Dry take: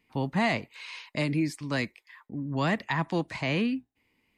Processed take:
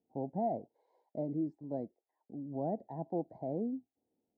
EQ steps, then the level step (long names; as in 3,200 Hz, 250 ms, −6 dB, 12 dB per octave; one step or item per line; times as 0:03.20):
high-pass filter 590 Hz 6 dB per octave
elliptic low-pass filter 750 Hz, stop band 40 dB
high-frequency loss of the air 110 metres
0.0 dB